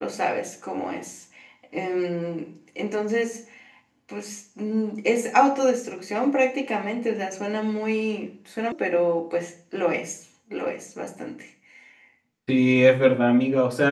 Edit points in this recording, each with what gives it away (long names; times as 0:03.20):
0:08.72: cut off before it has died away